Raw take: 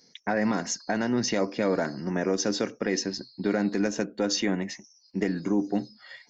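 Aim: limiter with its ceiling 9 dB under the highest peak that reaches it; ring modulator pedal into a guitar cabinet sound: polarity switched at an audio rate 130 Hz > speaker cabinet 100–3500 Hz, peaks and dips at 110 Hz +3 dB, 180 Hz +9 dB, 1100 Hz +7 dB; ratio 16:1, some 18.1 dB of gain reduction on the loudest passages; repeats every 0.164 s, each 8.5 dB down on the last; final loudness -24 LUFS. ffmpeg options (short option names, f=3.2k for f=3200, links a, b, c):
-af "acompressor=threshold=-39dB:ratio=16,alimiter=level_in=10.5dB:limit=-24dB:level=0:latency=1,volume=-10.5dB,aecho=1:1:164|328|492|656:0.376|0.143|0.0543|0.0206,aeval=exprs='val(0)*sgn(sin(2*PI*130*n/s))':c=same,highpass=100,equalizer=f=110:t=q:w=4:g=3,equalizer=f=180:t=q:w=4:g=9,equalizer=f=1.1k:t=q:w=4:g=7,lowpass=f=3.5k:w=0.5412,lowpass=f=3.5k:w=1.3066,volume=20.5dB"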